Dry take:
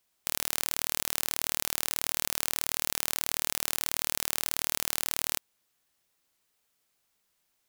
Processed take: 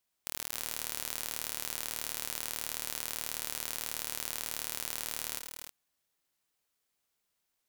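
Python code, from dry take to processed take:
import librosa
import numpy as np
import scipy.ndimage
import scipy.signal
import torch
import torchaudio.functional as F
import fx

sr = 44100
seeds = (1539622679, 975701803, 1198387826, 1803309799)

y = fx.echo_multitap(x, sr, ms=(96, 270, 300, 320), db=(-15.5, -9.5, -11.5, -12.0))
y = y * 10.0 ** (-7.0 / 20.0)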